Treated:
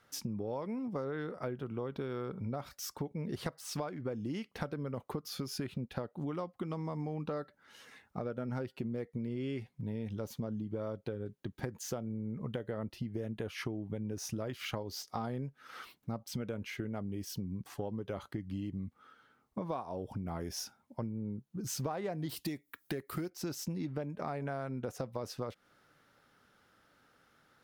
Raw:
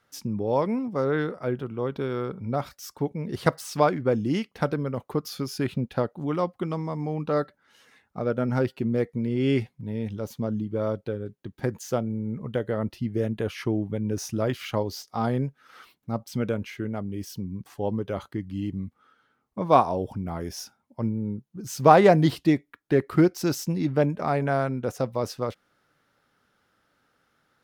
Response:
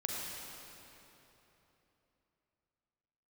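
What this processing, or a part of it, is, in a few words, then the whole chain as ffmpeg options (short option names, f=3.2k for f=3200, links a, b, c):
serial compression, peaks first: -filter_complex "[0:a]acompressor=threshold=-31dB:ratio=8,acompressor=threshold=-44dB:ratio=1.5,asettb=1/sr,asplit=3[a][b][c];[a]atrim=end=22.294[d];[b]atrim=start=22.29:end=23.3,asetpts=PTS-STARTPTS,afade=t=in:d=0.004:c=qsin,afade=t=out:st=1.006:d=0.004:c=qsin,aemphasis=mode=production:type=75fm[e];[c]atrim=start=23.296[f];[d][e]acrossfade=d=0.004:c1=hsin:c2=qsin[g];[g][f]acrossfade=d=0.004:c1=qsin:c2=hsin,volume=1.5dB"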